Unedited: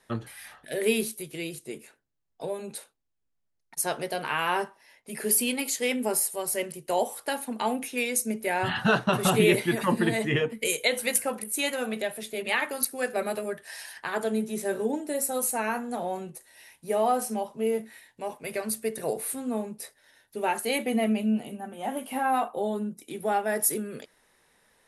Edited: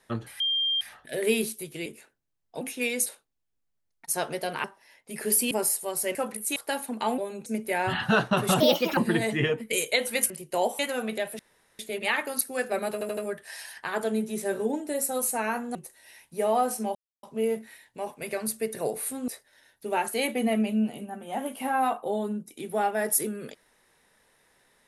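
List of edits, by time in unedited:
0.40 s: add tone 3.19 kHz -23 dBFS 0.41 s
1.45–1.72 s: delete
2.47–2.75 s: swap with 7.77–8.22 s
4.33–4.63 s: delete
5.50–6.02 s: delete
6.66–7.15 s: swap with 11.22–11.63 s
9.36–9.89 s: speed 143%
12.23 s: insert room tone 0.40 s
13.37 s: stutter 0.08 s, 4 plays
15.95–16.26 s: delete
17.46 s: insert silence 0.28 s
19.51–19.79 s: delete

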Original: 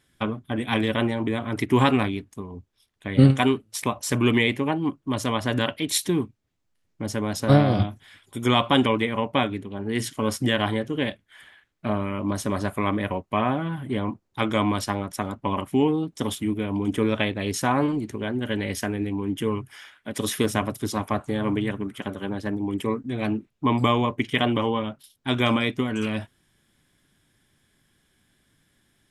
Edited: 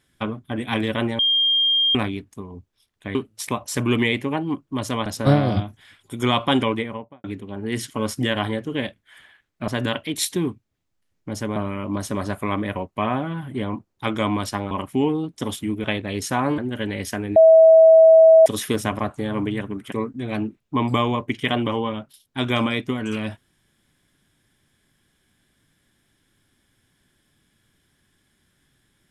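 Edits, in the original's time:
1.19–1.95 s: bleep 3.21 kHz -15.5 dBFS
3.15–3.50 s: delete
5.41–7.29 s: move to 11.91 s
8.91–9.47 s: studio fade out
15.06–15.50 s: delete
16.63–17.16 s: delete
17.90–18.28 s: delete
19.06–20.16 s: bleep 647 Hz -7 dBFS
20.69–21.09 s: delete
22.02–22.82 s: delete

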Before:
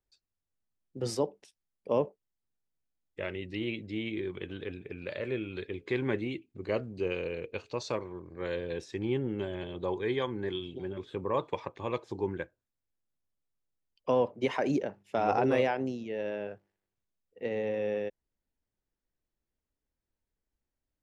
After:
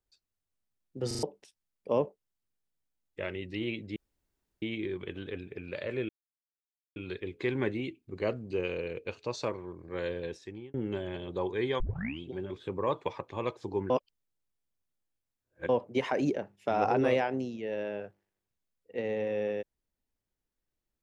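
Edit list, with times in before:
1.07 s: stutter in place 0.04 s, 4 plays
3.96 s: insert room tone 0.66 s
5.43 s: insert silence 0.87 s
8.64–9.21 s: fade out linear
10.27 s: tape start 0.41 s
12.37–14.16 s: reverse

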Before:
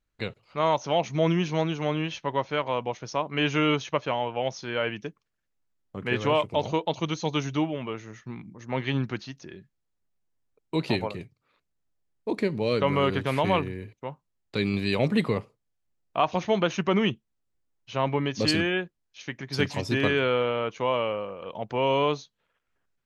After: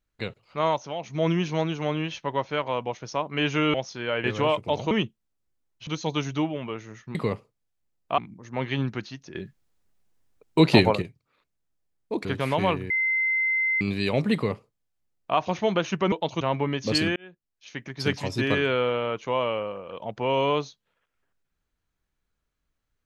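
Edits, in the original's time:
0.67–1.28 s: dip -9 dB, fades 0.28 s
3.74–4.42 s: delete
4.92–6.10 s: delete
6.77–7.06 s: swap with 16.98–17.94 s
9.51–11.18 s: gain +9.5 dB
12.41–13.11 s: delete
13.76–14.67 s: bleep 2.07 kHz -21 dBFS
15.20–16.23 s: copy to 8.34 s
18.69–19.36 s: fade in

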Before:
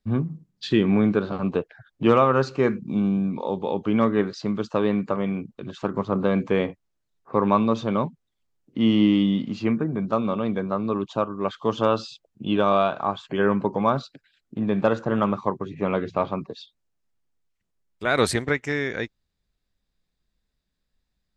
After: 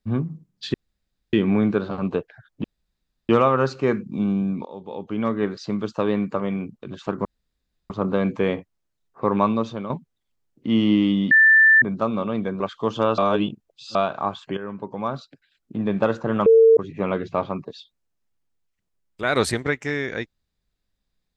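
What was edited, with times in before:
0.74 s: insert room tone 0.59 s
2.05 s: insert room tone 0.65 s
3.41–4.44 s: fade in, from -14 dB
6.01 s: insert room tone 0.65 s
7.47–8.01 s: fade out equal-power, to -11 dB
9.42–9.93 s: bleep 1.77 kHz -10 dBFS
10.71–11.42 s: delete
12.00–12.77 s: reverse
13.39–14.58 s: fade in, from -15 dB
15.28–15.59 s: bleep 451 Hz -9 dBFS

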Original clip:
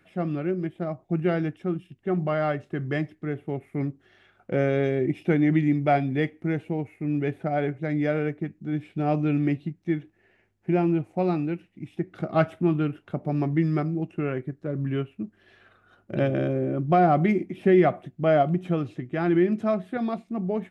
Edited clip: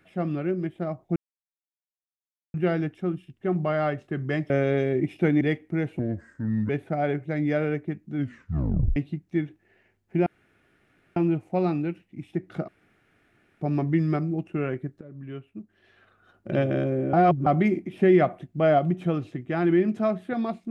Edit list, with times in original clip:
1.16 s: insert silence 1.38 s
3.12–4.56 s: delete
5.47–6.13 s: delete
6.71–7.23 s: speed 74%
8.70 s: tape stop 0.80 s
10.80 s: insert room tone 0.90 s
12.32–13.25 s: room tone
14.65–16.14 s: fade in, from -17.5 dB
16.77–17.10 s: reverse

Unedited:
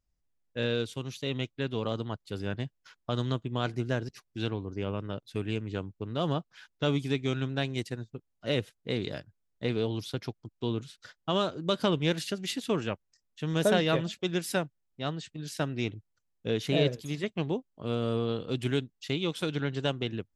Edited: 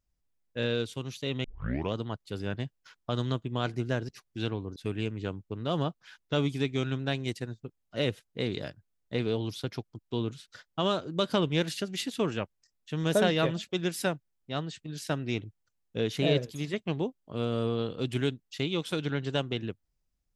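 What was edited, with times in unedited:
1.44 s: tape start 0.50 s
4.76–5.26 s: delete

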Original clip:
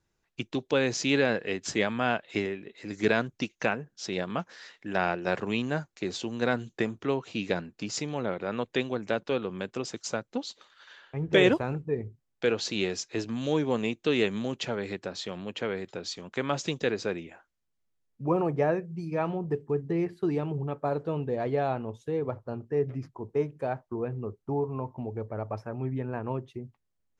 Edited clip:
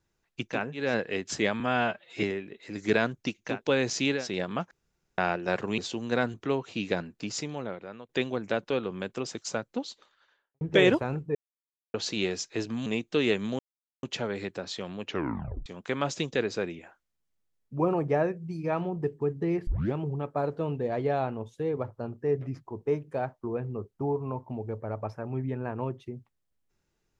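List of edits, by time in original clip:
0.54–1.20 s: swap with 3.65–3.95 s, crossfade 0.24 s
1.96–2.38 s: stretch 1.5×
4.50–4.97 s: room tone
5.57–6.08 s: delete
6.64–6.93 s: delete
7.88–8.68 s: fade out, to -20 dB
10.34–11.20 s: studio fade out
11.94–12.53 s: mute
13.45–13.78 s: delete
14.51 s: insert silence 0.44 s
15.54 s: tape stop 0.60 s
20.15 s: tape start 0.27 s

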